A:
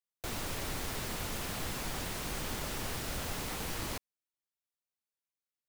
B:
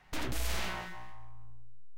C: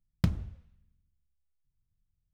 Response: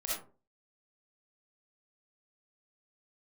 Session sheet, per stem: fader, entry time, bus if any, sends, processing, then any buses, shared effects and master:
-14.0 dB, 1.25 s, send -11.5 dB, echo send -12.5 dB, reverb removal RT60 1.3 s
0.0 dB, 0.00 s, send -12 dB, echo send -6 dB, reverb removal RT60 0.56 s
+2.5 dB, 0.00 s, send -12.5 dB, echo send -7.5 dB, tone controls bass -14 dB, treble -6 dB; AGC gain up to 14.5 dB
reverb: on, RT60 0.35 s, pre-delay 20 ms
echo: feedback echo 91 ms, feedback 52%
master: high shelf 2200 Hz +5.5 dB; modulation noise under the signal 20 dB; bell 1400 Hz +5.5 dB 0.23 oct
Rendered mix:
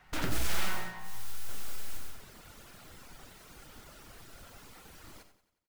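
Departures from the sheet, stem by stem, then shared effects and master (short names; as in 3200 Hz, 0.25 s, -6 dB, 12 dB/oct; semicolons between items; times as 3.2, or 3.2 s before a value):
stem C +2.5 dB -> -6.0 dB; master: missing high shelf 2200 Hz +5.5 dB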